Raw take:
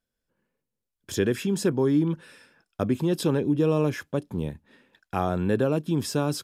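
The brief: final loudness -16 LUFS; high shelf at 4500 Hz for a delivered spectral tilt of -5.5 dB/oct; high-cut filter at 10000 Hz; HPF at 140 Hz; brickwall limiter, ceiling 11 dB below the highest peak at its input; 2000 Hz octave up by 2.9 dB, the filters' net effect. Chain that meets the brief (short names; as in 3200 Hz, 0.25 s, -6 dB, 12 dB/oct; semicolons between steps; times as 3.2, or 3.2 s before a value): HPF 140 Hz; LPF 10000 Hz; bell 2000 Hz +4.5 dB; high shelf 4500 Hz -3.5 dB; gain +16 dB; limiter -6 dBFS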